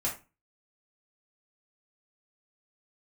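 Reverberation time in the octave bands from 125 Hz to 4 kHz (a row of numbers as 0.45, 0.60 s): 0.40, 0.40, 0.30, 0.30, 0.25, 0.20 s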